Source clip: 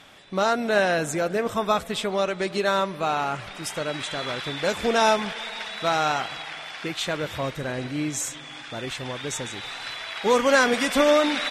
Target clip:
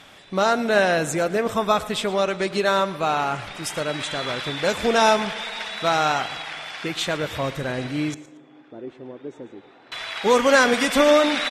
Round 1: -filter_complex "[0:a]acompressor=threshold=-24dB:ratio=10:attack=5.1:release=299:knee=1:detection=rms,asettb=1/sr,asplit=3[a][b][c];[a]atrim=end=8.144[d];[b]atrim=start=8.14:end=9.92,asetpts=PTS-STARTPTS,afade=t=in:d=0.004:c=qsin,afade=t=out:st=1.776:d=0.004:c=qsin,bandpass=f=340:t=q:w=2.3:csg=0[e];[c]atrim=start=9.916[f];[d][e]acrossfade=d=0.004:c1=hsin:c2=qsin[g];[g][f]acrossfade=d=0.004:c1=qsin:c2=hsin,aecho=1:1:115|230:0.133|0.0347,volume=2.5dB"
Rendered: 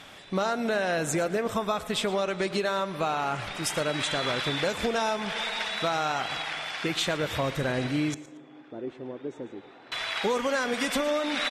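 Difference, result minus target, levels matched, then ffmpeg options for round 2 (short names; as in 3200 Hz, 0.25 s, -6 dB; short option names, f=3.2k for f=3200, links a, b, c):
compressor: peak gain reduction +13 dB
-filter_complex "[0:a]asettb=1/sr,asplit=3[a][b][c];[a]atrim=end=8.144[d];[b]atrim=start=8.14:end=9.92,asetpts=PTS-STARTPTS,afade=t=in:d=0.004:c=qsin,afade=t=out:st=1.776:d=0.004:c=qsin,bandpass=f=340:t=q:w=2.3:csg=0[e];[c]atrim=start=9.916[f];[d][e]acrossfade=d=0.004:c1=hsin:c2=qsin[g];[g][f]acrossfade=d=0.004:c1=qsin:c2=hsin,aecho=1:1:115|230:0.133|0.0347,volume=2.5dB"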